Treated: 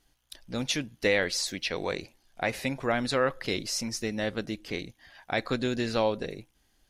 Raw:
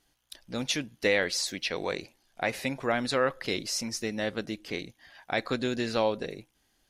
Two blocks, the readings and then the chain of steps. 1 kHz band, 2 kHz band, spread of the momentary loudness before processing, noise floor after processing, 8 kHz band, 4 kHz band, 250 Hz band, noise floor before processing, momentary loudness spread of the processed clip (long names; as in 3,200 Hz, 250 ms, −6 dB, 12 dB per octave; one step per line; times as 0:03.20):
0.0 dB, 0.0 dB, 12 LU, −70 dBFS, 0.0 dB, 0.0 dB, +1.0 dB, −71 dBFS, 12 LU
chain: low-shelf EQ 91 Hz +9 dB